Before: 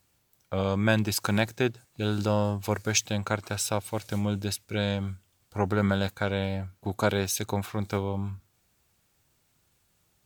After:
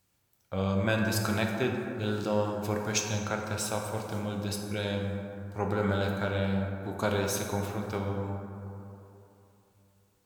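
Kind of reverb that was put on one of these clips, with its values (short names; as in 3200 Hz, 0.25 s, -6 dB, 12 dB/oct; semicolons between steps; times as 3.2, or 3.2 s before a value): plate-style reverb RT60 3 s, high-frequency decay 0.35×, DRR 0.5 dB; gain -5 dB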